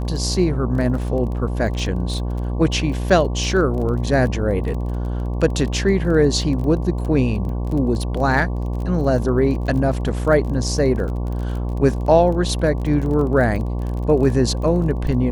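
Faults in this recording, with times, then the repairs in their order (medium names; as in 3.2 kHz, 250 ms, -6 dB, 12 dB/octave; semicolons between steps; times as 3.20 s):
buzz 60 Hz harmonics 19 -23 dBFS
crackle 23 per s -28 dBFS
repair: de-click; de-hum 60 Hz, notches 19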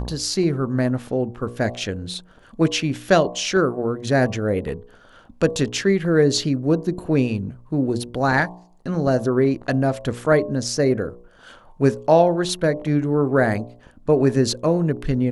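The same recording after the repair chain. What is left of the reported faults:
nothing left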